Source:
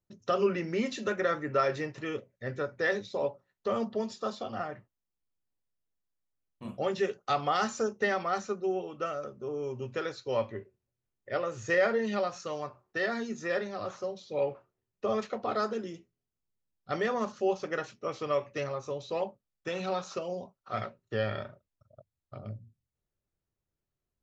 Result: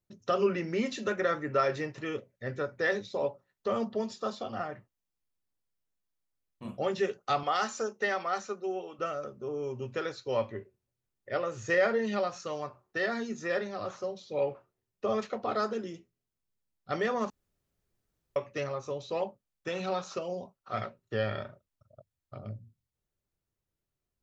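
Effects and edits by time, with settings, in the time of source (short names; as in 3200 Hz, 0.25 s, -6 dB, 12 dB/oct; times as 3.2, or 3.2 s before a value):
7.43–8.99 HPF 430 Hz 6 dB/oct
17.3–18.36 room tone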